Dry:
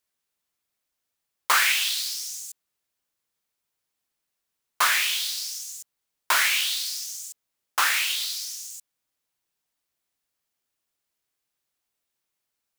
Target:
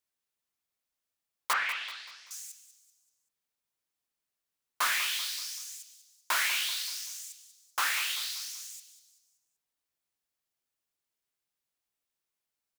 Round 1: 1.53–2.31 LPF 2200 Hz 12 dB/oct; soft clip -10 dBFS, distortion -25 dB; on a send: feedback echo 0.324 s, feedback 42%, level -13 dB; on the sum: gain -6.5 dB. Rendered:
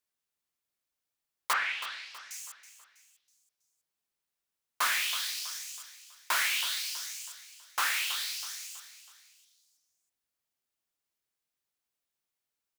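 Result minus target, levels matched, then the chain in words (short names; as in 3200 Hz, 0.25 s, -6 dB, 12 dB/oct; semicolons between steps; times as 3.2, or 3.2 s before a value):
echo 0.132 s late
1.53–2.31 LPF 2200 Hz 12 dB/oct; soft clip -10 dBFS, distortion -25 dB; on a send: feedback echo 0.192 s, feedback 42%, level -13 dB; on the sum: gain -6.5 dB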